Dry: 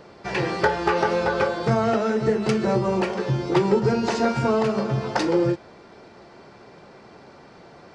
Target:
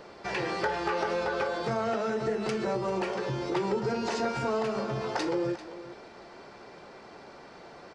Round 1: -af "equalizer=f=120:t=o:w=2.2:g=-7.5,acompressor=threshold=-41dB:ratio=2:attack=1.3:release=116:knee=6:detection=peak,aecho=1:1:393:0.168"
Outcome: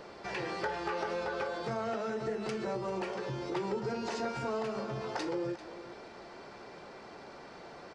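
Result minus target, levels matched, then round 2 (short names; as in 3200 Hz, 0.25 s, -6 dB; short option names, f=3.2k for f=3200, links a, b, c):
compressor: peak gain reduction +5.5 dB
-af "equalizer=f=120:t=o:w=2.2:g=-7.5,acompressor=threshold=-30dB:ratio=2:attack=1.3:release=116:knee=6:detection=peak,aecho=1:1:393:0.168"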